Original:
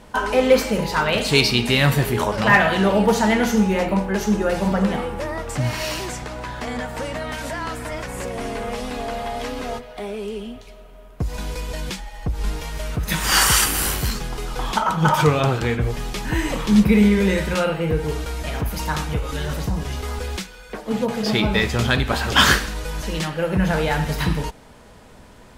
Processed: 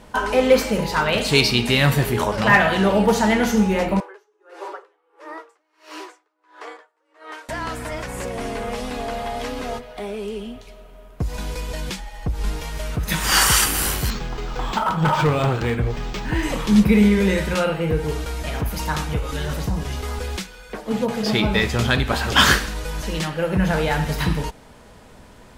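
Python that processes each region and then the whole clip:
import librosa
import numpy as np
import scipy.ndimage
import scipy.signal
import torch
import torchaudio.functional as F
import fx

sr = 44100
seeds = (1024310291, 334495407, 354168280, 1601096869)

y = fx.chain(x, sr, fx.cheby_ripple_highpass(hz=300.0, ripple_db=9),
    fx.high_shelf(hz=12000.0, db=-10.5),
    fx.tremolo_db(hz=1.5, depth_db=37), at=(4.0, 7.49))
y = fx.chain(y, sr, fx.clip_hard(threshold_db=-13.5),
    fx.resample_linear(factor=4), at=(14.1, 16.43))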